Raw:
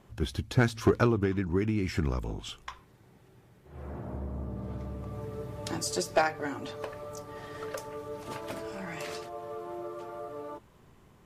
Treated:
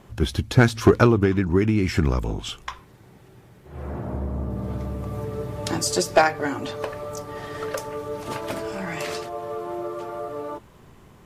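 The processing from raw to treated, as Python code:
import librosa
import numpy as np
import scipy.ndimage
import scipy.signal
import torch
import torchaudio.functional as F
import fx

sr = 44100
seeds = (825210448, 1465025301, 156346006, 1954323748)

y = fx.high_shelf(x, sr, hz=8600.0, db=6.0, at=(4.5, 5.24))
y = F.gain(torch.from_numpy(y), 8.5).numpy()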